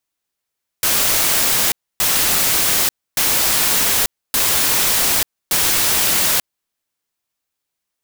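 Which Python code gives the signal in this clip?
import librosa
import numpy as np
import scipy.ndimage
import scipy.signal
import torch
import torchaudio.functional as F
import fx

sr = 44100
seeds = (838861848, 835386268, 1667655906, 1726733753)

y = fx.noise_burst(sr, seeds[0], colour='white', on_s=0.89, off_s=0.28, bursts=5, level_db=-16.0)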